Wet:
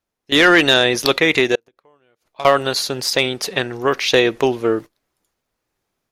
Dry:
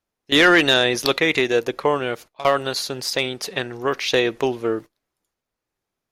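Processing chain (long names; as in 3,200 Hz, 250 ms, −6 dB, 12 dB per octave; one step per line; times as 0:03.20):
automatic gain control gain up to 6 dB
0:01.55–0:02.41: gate with flip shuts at −14 dBFS, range −39 dB
level +1 dB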